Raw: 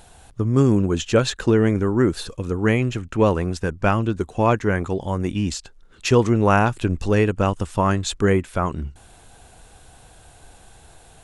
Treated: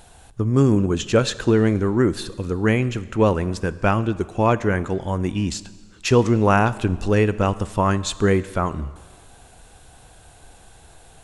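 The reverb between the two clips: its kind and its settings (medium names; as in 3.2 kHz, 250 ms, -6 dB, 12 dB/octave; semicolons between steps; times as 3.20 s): Schroeder reverb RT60 1.5 s, combs from 29 ms, DRR 16.5 dB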